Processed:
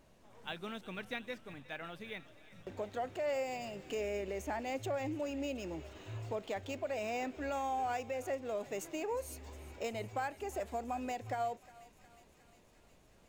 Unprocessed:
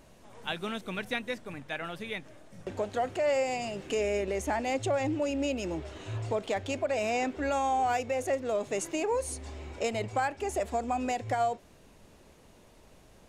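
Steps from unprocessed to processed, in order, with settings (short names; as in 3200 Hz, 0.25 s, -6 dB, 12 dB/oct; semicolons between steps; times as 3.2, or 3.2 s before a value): thinning echo 0.359 s, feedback 80%, high-pass 1100 Hz, level -17 dB; decimation joined by straight lines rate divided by 2×; gain -8 dB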